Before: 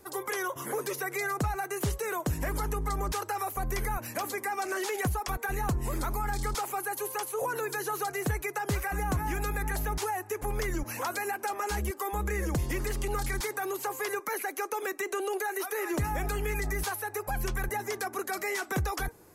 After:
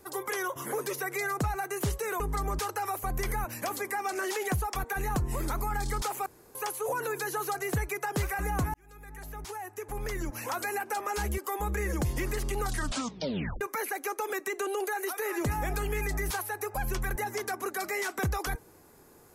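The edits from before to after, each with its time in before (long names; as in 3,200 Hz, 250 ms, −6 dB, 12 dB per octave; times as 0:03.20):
0:02.20–0:02.73: remove
0:06.79–0:07.08: fill with room tone
0:09.27–0:11.21: fade in
0:13.16: tape stop 0.98 s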